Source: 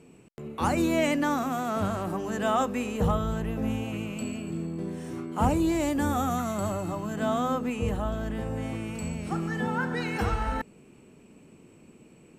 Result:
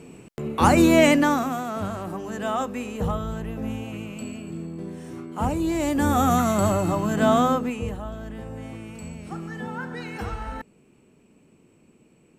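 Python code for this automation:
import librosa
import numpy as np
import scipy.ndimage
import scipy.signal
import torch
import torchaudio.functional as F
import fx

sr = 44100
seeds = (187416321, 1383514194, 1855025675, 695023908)

y = fx.gain(x, sr, db=fx.line((1.09, 9.0), (1.72, -1.0), (5.55, -1.0), (6.32, 8.5), (7.4, 8.5), (7.99, -4.0)))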